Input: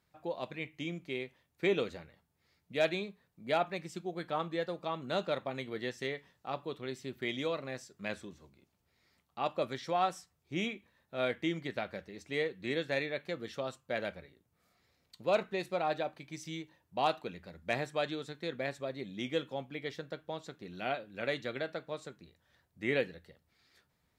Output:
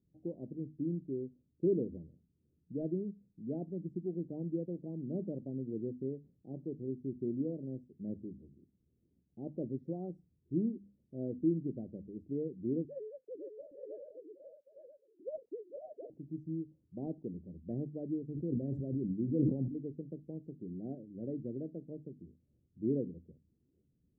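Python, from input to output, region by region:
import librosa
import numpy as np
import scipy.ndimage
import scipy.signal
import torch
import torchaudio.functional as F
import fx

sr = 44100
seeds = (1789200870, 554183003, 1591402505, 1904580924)

y = fx.chain(x, sr, fx.sine_speech(),
    fx.echo_multitap(ms=(500, 770, 863), db=(-7.5, -15.0, -5.5)), at=(12.85, 16.1))
y = fx.chain(y, sr, fx.low_shelf(hz=71.0, db=11.0),
    fx.sustainer(db_per_s=31.0), at=(18.27, 19.68))
y = scipy.signal.sosfilt(scipy.signal.cheby2(4, 60, 1100.0, 'lowpass', fs=sr, output='sos'), y)
y = fx.low_shelf(y, sr, hz=210.0, db=-7.5)
y = fx.hum_notches(y, sr, base_hz=50, count=5)
y = F.gain(torch.from_numpy(y), 9.5).numpy()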